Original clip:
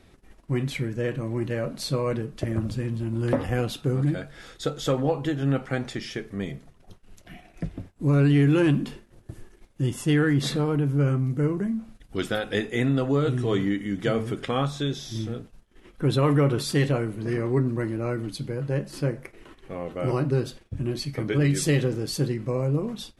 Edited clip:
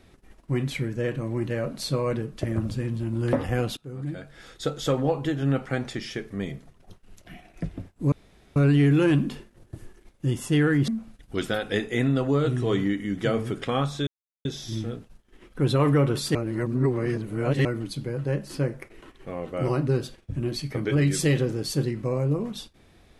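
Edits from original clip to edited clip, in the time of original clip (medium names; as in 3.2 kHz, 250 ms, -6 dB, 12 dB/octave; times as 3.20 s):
3.77–4.67 s: fade in, from -21.5 dB
8.12 s: insert room tone 0.44 s
10.44–11.69 s: delete
14.88 s: insert silence 0.38 s
16.78–18.08 s: reverse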